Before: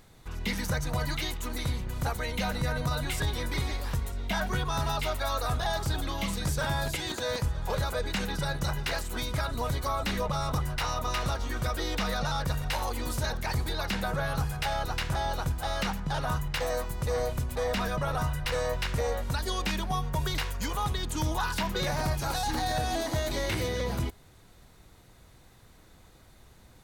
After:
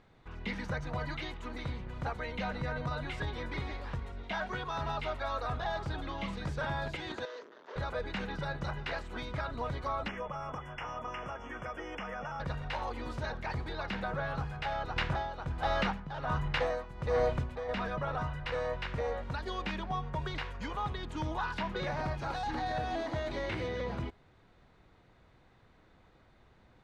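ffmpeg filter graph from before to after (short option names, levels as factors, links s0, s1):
-filter_complex "[0:a]asettb=1/sr,asplit=3[s0][s1][s2];[s0]atrim=end=4.234[s3];[s1]atrim=start=4.23:end=4.81,asetpts=PTS-STARTPTS,afade=t=in:d=0.004:c=qsin,afade=t=out:st=0.576:d=0.004:c=qsin,acrossover=split=5500[s4][s5];[s5]acompressor=threshold=0.00316:ratio=4:attack=1:release=60[s6];[s4][s6]amix=inputs=2:normalize=0,bass=f=250:g=-6,treble=f=4000:g=6[s7];[s2]atrim=start=4.806[s8];[s3][s7]acrossfade=d=0.004:c1=hsin:c2=qsin[s9];[s9][s8]acrossfade=d=0.004:c1=qsin:c2=hsin,asettb=1/sr,asplit=3[s10][s11][s12];[s10]atrim=end=7.254[s13];[s11]atrim=start=7.25:end=7.76,asetpts=PTS-STARTPTS,afade=t=in:d=0.004:c=qsin,afade=t=out:st=0.506:d=0.004:c=qsin,bandreject=f=50:t=h:w=6,bandreject=f=100:t=h:w=6,bandreject=f=150:t=h:w=6,bandreject=f=200:t=h:w=6,bandreject=f=250:t=h:w=6,bandreject=f=300:t=h:w=6,bandreject=f=350:t=h:w=6,bandreject=f=400:t=h:w=6,bandreject=f=450:t=h:w=6,bandreject=f=500:t=h:w=6,asoftclip=type=hard:threshold=0.0133,highpass=f=330:w=0.5412,highpass=f=330:w=1.3066,equalizer=f=420:t=q:w=4:g=4,equalizer=f=780:t=q:w=4:g=-9,equalizer=f=2400:t=q:w=4:g=-6,equalizer=f=6200:t=q:w=4:g=6,lowpass=f=6300:w=0.5412,lowpass=f=6300:w=1.3066[s14];[s12]atrim=start=7.756[s15];[s13][s14]acrossfade=d=0.004:c1=hsin:c2=qsin[s16];[s16][s15]acrossfade=d=0.004:c1=qsin:c2=hsin,asettb=1/sr,asplit=3[s17][s18][s19];[s17]atrim=end=10.084[s20];[s18]atrim=start=10.08:end=12.4,asetpts=PTS-STARTPTS,afade=t=in:d=0.004:c=qsin,afade=t=out:st=2.316:d=0.004:c=qsin,acrossover=split=150|440[s21][s22][s23];[s21]acompressor=threshold=0.00708:ratio=4[s24];[s22]acompressor=threshold=0.00708:ratio=4[s25];[s23]acompressor=threshold=0.0224:ratio=4[s26];[s24][s25][s26]amix=inputs=3:normalize=0,asuperstop=centerf=4000:order=20:qfactor=2.1,aeval=exprs='val(0)+0.00158*sin(2*PI*3400*n/s)':c=same[s27];[s19]atrim=start=12.396[s28];[s20][s27]acrossfade=d=0.004:c1=hsin:c2=qsin[s29];[s29][s28]acrossfade=d=0.004:c1=qsin:c2=hsin,asettb=1/sr,asplit=3[s30][s31][s32];[s30]atrim=end=14.964[s33];[s31]atrim=start=14.96:end=17.69,asetpts=PTS-STARTPTS,afade=t=in:d=0.004:c=qsin,afade=t=out:st=2.726:d=0.004:c=qsin,acontrast=64,tremolo=f=1.3:d=0.73[s34];[s32]atrim=start=17.686[s35];[s33][s34]acrossfade=d=0.004:c1=hsin:c2=qsin[s36];[s36][s35]acrossfade=d=0.004:c1=qsin:c2=hsin,lowpass=2700,lowshelf=f=130:g=-6,volume=0.668"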